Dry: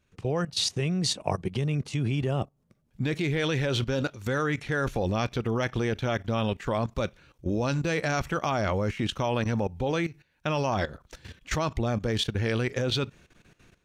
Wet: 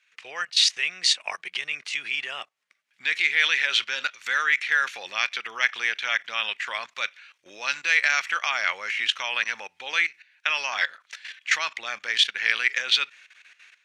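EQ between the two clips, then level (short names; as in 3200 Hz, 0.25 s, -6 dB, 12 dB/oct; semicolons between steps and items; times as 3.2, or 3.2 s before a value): resonant high-pass 2000 Hz, resonance Q 2.1; air absorption 56 m; +8.5 dB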